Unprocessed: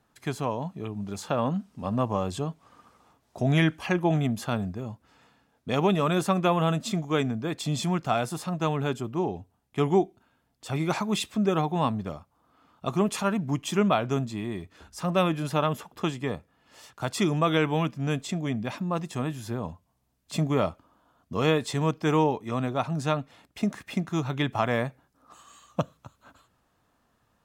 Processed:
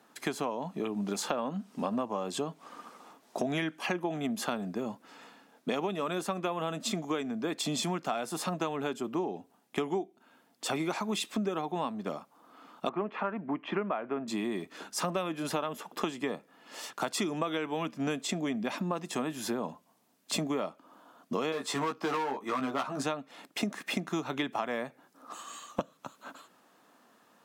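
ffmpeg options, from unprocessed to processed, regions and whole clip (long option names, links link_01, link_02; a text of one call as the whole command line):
ffmpeg -i in.wav -filter_complex "[0:a]asettb=1/sr,asplit=3[link_01][link_02][link_03];[link_01]atrim=end=12.894[link_04];[link_02]atrim=start=12.89:end=14.28,asetpts=PTS-STARTPTS,afade=type=in:duration=0.004:curve=qsin,afade=type=out:start_time=1.386:duration=0.004:curve=qsin,lowpass=frequency=2200:width=0.5412,lowpass=frequency=2200:width=1.3066,lowshelf=frequency=190:gain=-9.5[link_05];[link_03]atrim=start=14.276[link_06];[link_04][link_05]acrossfade=duration=0.004:curve1=hsin:curve2=qsin[link_07];[link_07][link_06]acrossfade=duration=0.004:curve1=qsin:curve2=hsin,asettb=1/sr,asplit=3[link_08][link_09][link_10];[link_08]atrim=end=21.524[link_11];[link_09]atrim=start=21.52:end=23.03,asetpts=PTS-STARTPTS,afade=type=in:duration=0.004:curve=qsin,afade=type=out:start_time=1.506:duration=0.004:curve=qsin,equalizer=frequency=1200:width_type=o:width=0.9:gain=8.5,asoftclip=type=hard:threshold=-21.5dB,asplit=2[link_12][link_13];[link_13]adelay=15,volume=-3.5dB[link_14];[link_12][link_14]amix=inputs=2:normalize=0,atrim=end_sample=66591[link_15];[link_10]atrim=start=23.026[link_16];[link_11][link_15]acrossfade=duration=0.004:curve1=hsin:curve2=qsin[link_17];[link_17][link_16]acrossfade=duration=0.004:curve1=qsin:curve2=hsin,highpass=frequency=210:width=0.5412,highpass=frequency=210:width=1.3066,acompressor=threshold=-37dB:ratio=10,volume=8dB" out.wav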